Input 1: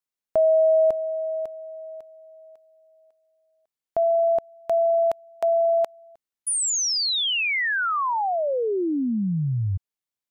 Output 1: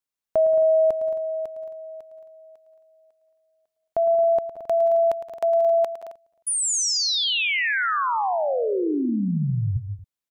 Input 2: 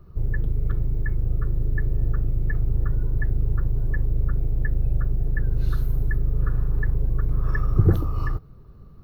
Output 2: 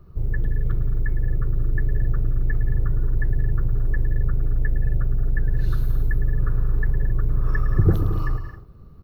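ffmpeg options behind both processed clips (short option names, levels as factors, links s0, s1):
-af "aecho=1:1:109|170|180|221|268:0.237|0.112|0.158|0.237|0.15"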